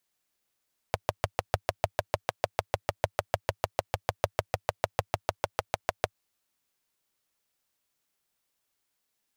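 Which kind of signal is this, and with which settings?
pulse-train model of a single-cylinder engine, steady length 5.24 s, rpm 800, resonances 100/610 Hz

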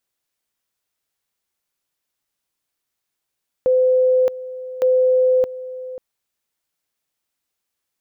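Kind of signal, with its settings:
tone at two levels in turn 511 Hz −12 dBFS, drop 16 dB, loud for 0.62 s, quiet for 0.54 s, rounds 2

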